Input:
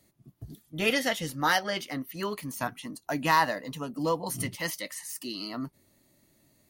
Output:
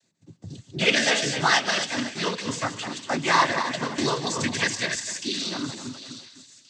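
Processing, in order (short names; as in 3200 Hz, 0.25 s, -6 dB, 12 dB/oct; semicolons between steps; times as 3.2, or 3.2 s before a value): regenerating reverse delay 0.125 s, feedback 62%, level -9.5 dB; gate -57 dBFS, range -12 dB; high shelf 2100 Hz +8.5 dB; in parallel at +0.5 dB: compressor, threshold -34 dBFS, peak gain reduction 17.5 dB; on the sum: noise vocoder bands 16; 0.98–1.4 doubler 14 ms -3 dB; thin delay 0.713 s, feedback 38%, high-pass 3100 Hz, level -11.5 dB; on a send at -21.5 dB: reverb, pre-delay 3 ms; 3.98–4.96 on the sum: three-band squash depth 100%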